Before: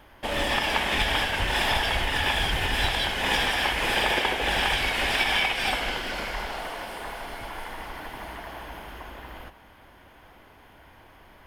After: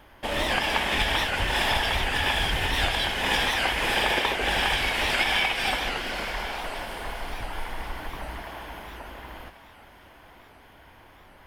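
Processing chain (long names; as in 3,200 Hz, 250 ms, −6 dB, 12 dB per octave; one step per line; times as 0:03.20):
0:06.64–0:08.42: low-shelf EQ 100 Hz +9.5 dB
feedback echo with a high-pass in the loop 1,089 ms, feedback 42%, level −16 dB
wow of a warped record 78 rpm, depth 160 cents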